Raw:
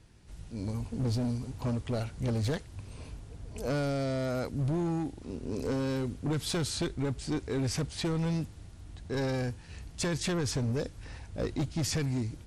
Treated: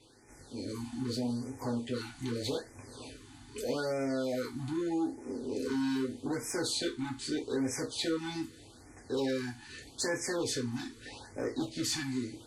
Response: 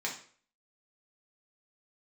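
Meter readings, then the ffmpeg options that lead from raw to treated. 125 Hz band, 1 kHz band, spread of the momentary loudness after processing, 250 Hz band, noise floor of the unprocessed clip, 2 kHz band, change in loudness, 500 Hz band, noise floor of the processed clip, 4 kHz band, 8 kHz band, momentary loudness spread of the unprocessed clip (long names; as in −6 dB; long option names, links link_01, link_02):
−11.5 dB, −1.5 dB, 14 LU, −1.0 dB, −50 dBFS, +0.5 dB, −2.0 dB, −0.5 dB, −55 dBFS, +1.0 dB, +1.0 dB, 15 LU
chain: -filter_complex "[1:a]atrim=start_sample=2205,asetrate=83790,aresample=44100[link_01];[0:a][link_01]afir=irnorm=-1:irlink=0,asplit=2[link_02][link_03];[link_03]acompressor=threshold=-43dB:ratio=20,volume=2dB[link_04];[link_02][link_04]amix=inputs=2:normalize=0,volume=23.5dB,asoftclip=hard,volume=-23.5dB,afftfilt=real='re*(1-between(b*sr/1024,480*pow(3600/480,0.5+0.5*sin(2*PI*0.81*pts/sr))/1.41,480*pow(3600/480,0.5+0.5*sin(2*PI*0.81*pts/sr))*1.41))':imag='im*(1-between(b*sr/1024,480*pow(3600/480,0.5+0.5*sin(2*PI*0.81*pts/sr))/1.41,480*pow(3600/480,0.5+0.5*sin(2*PI*0.81*pts/sr))*1.41))':win_size=1024:overlap=0.75"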